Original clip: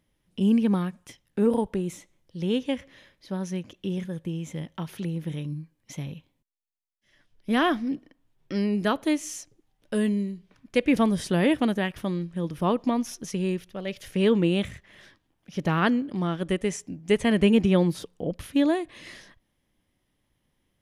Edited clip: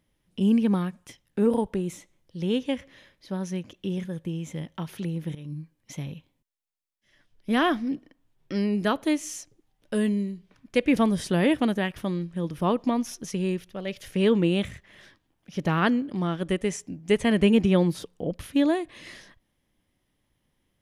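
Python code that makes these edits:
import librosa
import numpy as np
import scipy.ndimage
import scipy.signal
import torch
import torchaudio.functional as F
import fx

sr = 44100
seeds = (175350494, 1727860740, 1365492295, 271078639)

y = fx.edit(x, sr, fx.fade_in_from(start_s=5.35, length_s=0.25, floor_db=-14.0), tone=tone)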